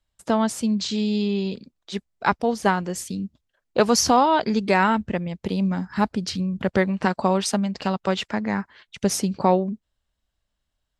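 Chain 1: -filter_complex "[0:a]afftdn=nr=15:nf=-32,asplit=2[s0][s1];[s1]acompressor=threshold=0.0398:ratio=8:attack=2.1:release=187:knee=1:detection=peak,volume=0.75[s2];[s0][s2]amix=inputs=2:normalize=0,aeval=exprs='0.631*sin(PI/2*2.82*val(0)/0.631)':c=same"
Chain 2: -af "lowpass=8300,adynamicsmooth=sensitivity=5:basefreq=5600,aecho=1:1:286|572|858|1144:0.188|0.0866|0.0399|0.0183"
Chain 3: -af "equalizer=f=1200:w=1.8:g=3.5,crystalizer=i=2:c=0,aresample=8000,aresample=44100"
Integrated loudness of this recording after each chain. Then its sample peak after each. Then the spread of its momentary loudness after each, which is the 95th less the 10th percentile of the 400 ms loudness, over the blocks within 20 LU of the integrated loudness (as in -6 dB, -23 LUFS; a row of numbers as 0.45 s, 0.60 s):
-11.5 LUFS, -23.0 LUFS, -22.5 LUFS; -4.0 dBFS, -5.0 dBFS, -2.0 dBFS; 8 LU, 13 LU, 13 LU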